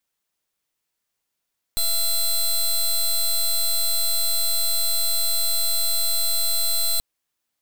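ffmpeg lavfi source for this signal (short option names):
-f lavfi -i "aevalsrc='0.0944*(2*lt(mod(4070*t,1),0.15)-1)':d=5.23:s=44100"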